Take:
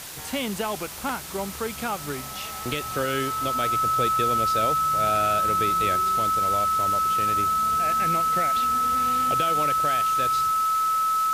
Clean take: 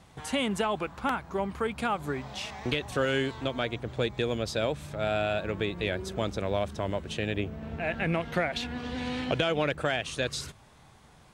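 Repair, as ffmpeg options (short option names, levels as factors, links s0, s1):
-af "adeclick=t=4,bandreject=f=1300:w=30,afwtdn=0.014,asetnsamples=n=441:p=0,asendcmd='5.96 volume volume 3.5dB',volume=1"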